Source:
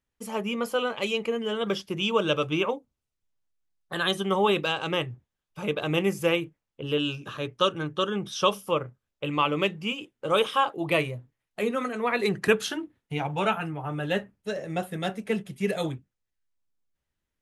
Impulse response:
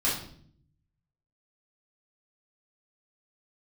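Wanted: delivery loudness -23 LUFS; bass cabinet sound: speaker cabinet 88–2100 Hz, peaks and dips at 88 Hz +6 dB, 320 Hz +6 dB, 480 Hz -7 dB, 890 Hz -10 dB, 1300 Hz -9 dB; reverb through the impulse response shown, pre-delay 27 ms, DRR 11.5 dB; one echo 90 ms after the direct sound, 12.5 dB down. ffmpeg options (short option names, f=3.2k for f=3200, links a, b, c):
-filter_complex "[0:a]aecho=1:1:90:0.237,asplit=2[a][b];[1:a]atrim=start_sample=2205,adelay=27[c];[b][c]afir=irnorm=-1:irlink=0,volume=-21.5dB[d];[a][d]amix=inputs=2:normalize=0,highpass=f=88:w=0.5412,highpass=f=88:w=1.3066,equalizer=f=88:t=q:w=4:g=6,equalizer=f=320:t=q:w=4:g=6,equalizer=f=480:t=q:w=4:g=-7,equalizer=f=890:t=q:w=4:g=-10,equalizer=f=1.3k:t=q:w=4:g=-9,lowpass=f=2.1k:w=0.5412,lowpass=f=2.1k:w=1.3066,volume=7dB"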